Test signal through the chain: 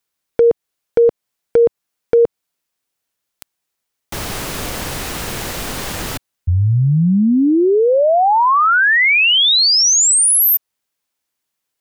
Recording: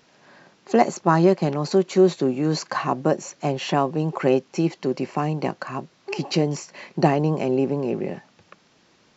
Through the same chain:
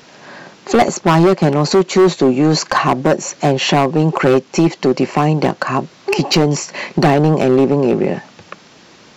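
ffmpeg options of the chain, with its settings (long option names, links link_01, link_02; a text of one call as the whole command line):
ffmpeg -i in.wav -filter_complex "[0:a]lowshelf=frequency=80:gain=-4.5,asplit=2[link_01][link_02];[link_02]acompressor=threshold=-29dB:ratio=20,volume=1.5dB[link_03];[link_01][link_03]amix=inputs=2:normalize=0,volume=14.5dB,asoftclip=hard,volume=-14.5dB,volume=8.5dB" out.wav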